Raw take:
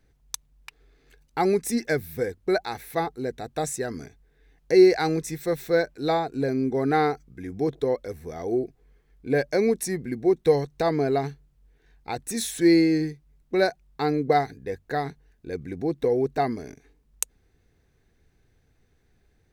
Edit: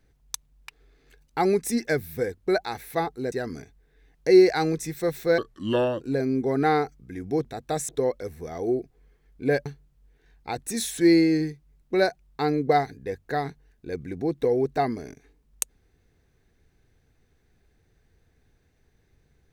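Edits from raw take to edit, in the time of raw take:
0:03.32–0:03.76: move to 0:07.73
0:05.82–0:06.29: play speed 75%
0:09.50–0:11.26: remove

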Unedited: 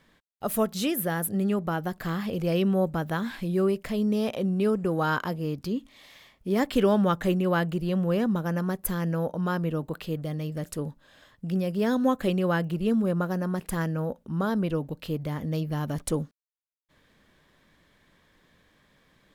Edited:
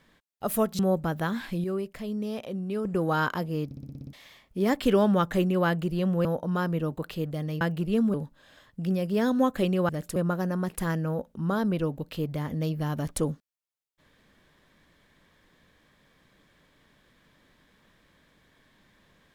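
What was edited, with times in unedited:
0:00.79–0:02.69: remove
0:03.54–0:04.75: clip gain −6.5 dB
0:05.55: stutter in place 0.06 s, 8 plays
0:08.15–0:09.16: remove
0:10.52–0:10.79: swap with 0:12.54–0:13.07

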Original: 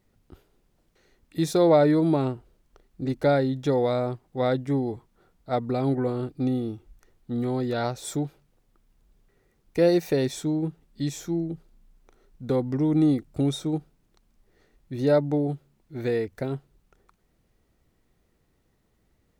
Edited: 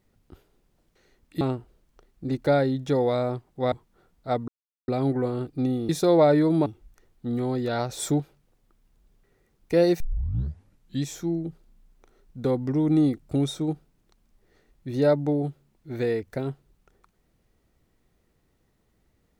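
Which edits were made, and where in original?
0:01.41–0:02.18: move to 0:06.71
0:04.49–0:04.94: remove
0:05.70: splice in silence 0.40 s
0:07.94–0:08.25: clip gain +4 dB
0:10.05: tape start 1.04 s

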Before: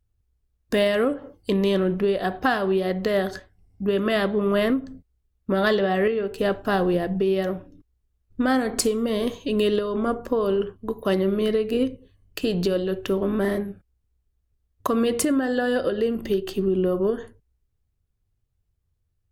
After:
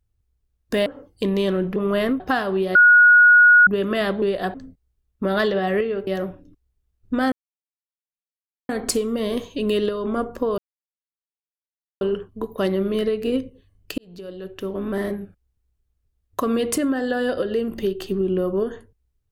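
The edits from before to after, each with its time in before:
0:00.86–0:01.13: remove
0:02.03–0:02.35: swap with 0:04.37–0:04.81
0:02.90–0:03.82: beep over 1,450 Hz −8 dBFS
0:06.34–0:07.34: remove
0:08.59: splice in silence 1.37 s
0:10.48: splice in silence 1.43 s
0:12.45–0:13.69: fade in

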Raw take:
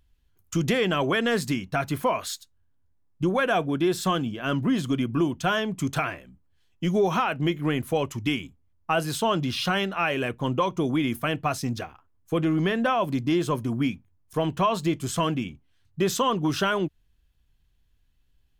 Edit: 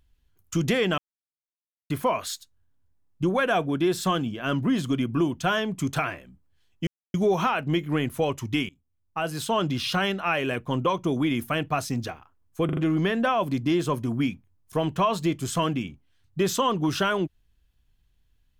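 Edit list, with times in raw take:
0:00.98–0:01.90: silence
0:06.87: splice in silence 0.27 s
0:08.42–0:09.37: fade in, from −19.5 dB
0:12.38: stutter 0.04 s, 4 plays

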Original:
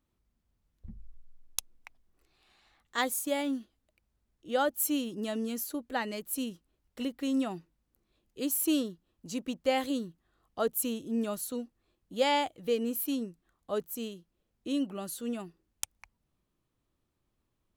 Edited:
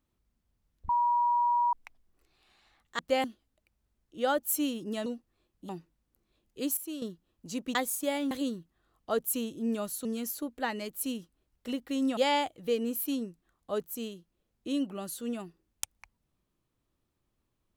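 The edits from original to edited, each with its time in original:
0:00.89–0:01.73: beep over 960 Hz −23 dBFS
0:02.99–0:03.55: swap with 0:09.55–0:09.80
0:05.37–0:07.49: swap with 0:11.54–0:12.17
0:08.57–0:08.82: clip gain −11.5 dB

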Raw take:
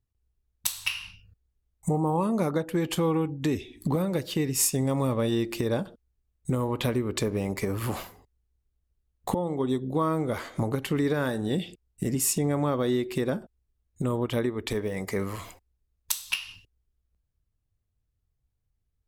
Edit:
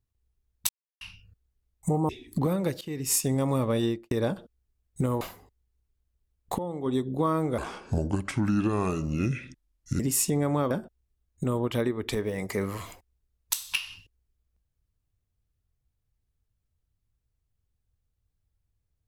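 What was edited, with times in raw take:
0:00.69–0:01.01: silence
0:02.09–0:03.58: remove
0:04.30–0:04.82: fade in equal-power, from −18 dB
0:05.32–0:05.60: fade out and dull
0:06.70–0:07.97: remove
0:09.31–0:09.62: clip gain −4.5 dB
0:10.34–0:12.08: play speed 72%
0:12.79–0:13.29: remove

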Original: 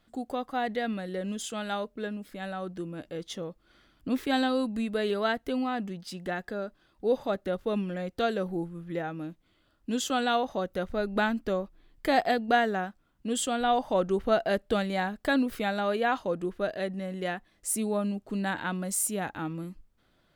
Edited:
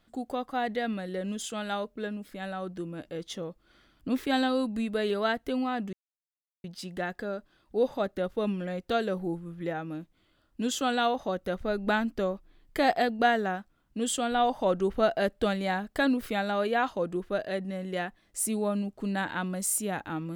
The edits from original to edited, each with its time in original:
0:05.93: splice in silence 0.71 s

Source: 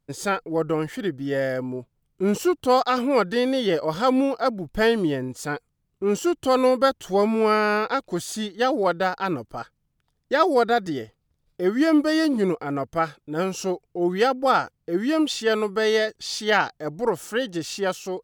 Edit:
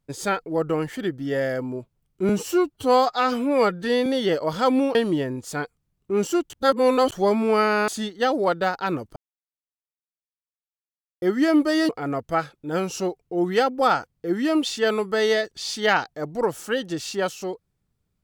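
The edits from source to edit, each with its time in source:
0:02.29–0:03.47: time-stretch 1.5×
0:04.36–0:04.87: remove
0:06.42–0:07.04: reverse
0:07.80–0:08.27: remove
0:09.55–0:11.61: silence
0:12.28–0:12.53: remove

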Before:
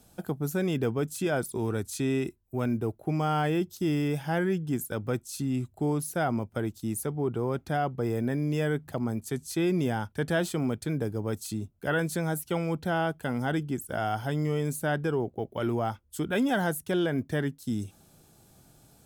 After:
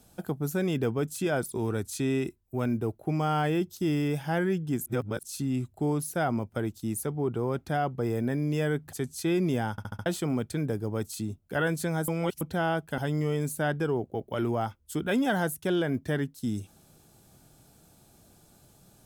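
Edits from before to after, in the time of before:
0:04.86–0:05.23: reverse
0:08.93–0:09.25: remove
0:10.03: stutter in place 0.07 s, 5 plays
0:12.40–0:12.73: reverse
0:13.30–0:14.22: remove

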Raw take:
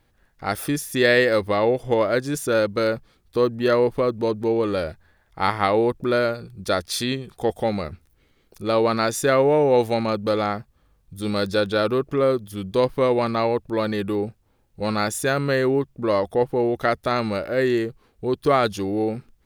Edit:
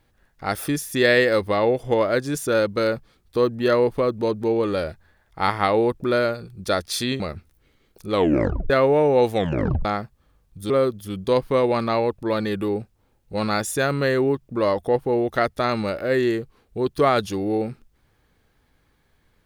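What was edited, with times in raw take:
0:07.20–0:07.76: remove
0:08.67: tape stop 0.59 s
0:09.90: tape stop 0.51 s
0:11.26–0:12.17: remove

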